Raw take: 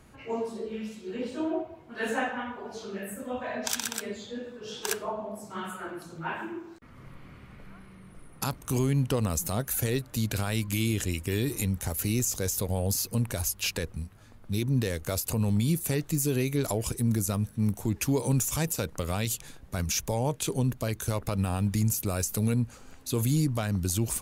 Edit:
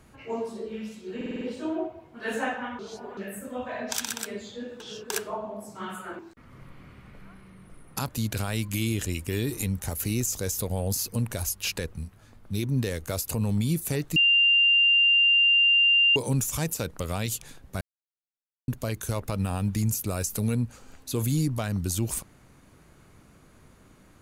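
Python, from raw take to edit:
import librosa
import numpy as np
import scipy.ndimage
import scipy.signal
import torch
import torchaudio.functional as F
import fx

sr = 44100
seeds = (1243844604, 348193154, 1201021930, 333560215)

y = fx.edit(x, sr, fx.stutter(start_s=1.16, slice_s=0.05, count=6),
    fx.reverse_span(start_s=2.54, length_s=0.38),
    fx.reverse_span(start_s=4.55, length_s=0.3),
    fx.cut(start_s=5.94, length_s=0.7),
    fx.cut(start_s=8.54, length_s=1.54),
    fx.bleep(start_s=16.15, length_s=2.0, hz=2790.0, db=-16.5),
    fx.silence(start_s=19.8, length_s=0.87), tone=tone)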